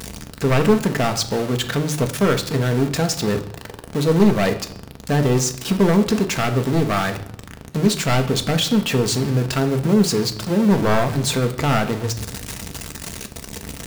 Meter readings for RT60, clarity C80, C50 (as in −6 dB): 0.70 s, 15.5 dB, 12.5 dB